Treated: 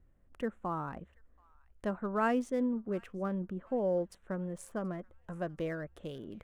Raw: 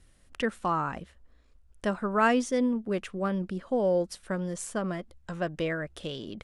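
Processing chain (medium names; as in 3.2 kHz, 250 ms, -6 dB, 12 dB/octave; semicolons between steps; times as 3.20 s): local Wiener filter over 9 samples; peaking EQ 4.1 kHz -14 dB 2.5 oct, from 0.88 s -7.5 dB; feedback echo behind a high-pass 730 ms, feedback 44%, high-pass 1.5 kHz, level -22.5 dB; trim -5 dB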